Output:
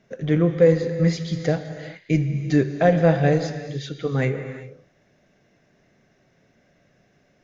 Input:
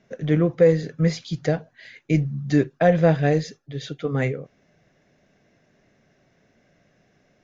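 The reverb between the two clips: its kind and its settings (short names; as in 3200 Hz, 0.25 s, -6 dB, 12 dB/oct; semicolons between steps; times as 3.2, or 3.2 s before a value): non-linear reverb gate 0.42 s flat, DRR 8 dB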